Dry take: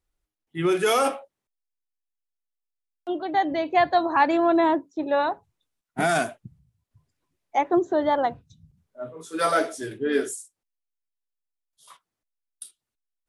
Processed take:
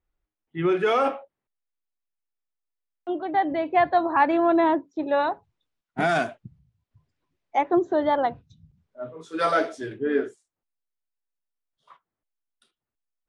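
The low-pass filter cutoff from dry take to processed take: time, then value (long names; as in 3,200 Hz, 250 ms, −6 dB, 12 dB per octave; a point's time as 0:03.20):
0:04.15 2,500 Hz
0:05.01 4,500 Hz
0:09.74 4,500 Hz
0:10.15 1,800 Hz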